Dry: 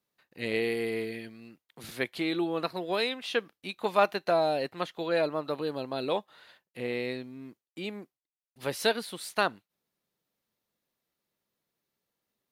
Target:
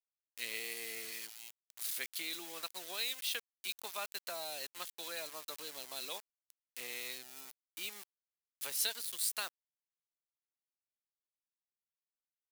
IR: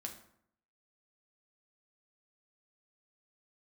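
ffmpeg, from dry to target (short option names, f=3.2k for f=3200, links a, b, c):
-filter_complex "[0:a]acrossover=split=160[a][b];[b]acompressor=threshold=-37dB:ratio=2[c];[a][c]amix=inputs=2:normalize=0,aeval=exprs='val(0)*gte(abs(val(0)),0.00708)':c=same,aderivative,volume=8dB"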